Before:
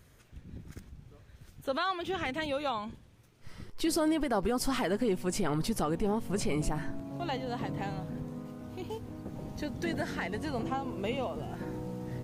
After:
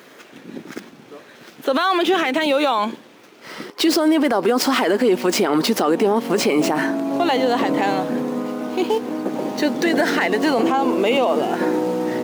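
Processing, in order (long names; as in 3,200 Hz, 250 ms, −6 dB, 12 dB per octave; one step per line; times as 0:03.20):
running median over 5 samples
high-pass filter 260 Hz 24 dB per octave
boost into a limiter +29.5 dB
level −8 dB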